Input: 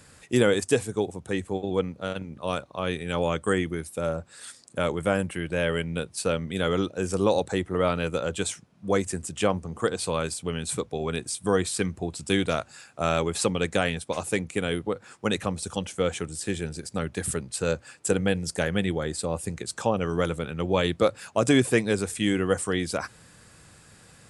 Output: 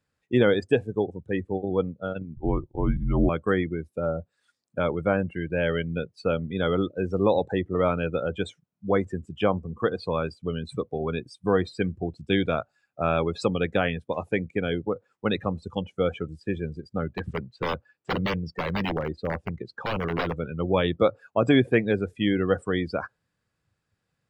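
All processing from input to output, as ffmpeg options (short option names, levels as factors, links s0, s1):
-filter_complex "[0:a]asettb=1/sr,asplit=3[s0][s1][s2];[s0]atrim=end=2.364[s3];[s1]atrim=start=2.36:end=3.29,asetpts=PTS-STARTPTS,afade=t=in:d=0.004:c=qsin,afade=t=out:st=0.926:d=0.004:c=qsin,tiltshelf=f=850:g=8,afreqshift=-220[s4];[s2]atrim=start=3.286[s5];[s3][s4]acrossfade=d=0.004:c1=hsin:c2=qsin[s6];[s6][s5]acrossfade=d=0.004:c1=qsin:c2=hsin,asettb=1/sr,asplit=3[s7][s8][s9];[s7]atrim=end=17.034[s10];[s8]atrim=start=17.03:end=20.37,asetpts=PTS-STARTPTS,afade=t=in:d=0.004:c=qsin,afade=t=out:st=3.336:d=0.004:c=qsin,lowpass=5200,aeval=exprs='(mod(8.91*val(0)+1,2)-1)/8.91':c=same[s11];[s9]atrim=start=20.366[s12];[s10][s11]acrossfade=d=0.004:c1=hsin:c2=qsin[s13];[s13][s12]acrossfade=d=0.004:c1=qsin:c2=hsin,equalizer=f=9000:t=o:w=0.91:g=-12.5,afftdn=nr=26:nf=-33,volume=1.12"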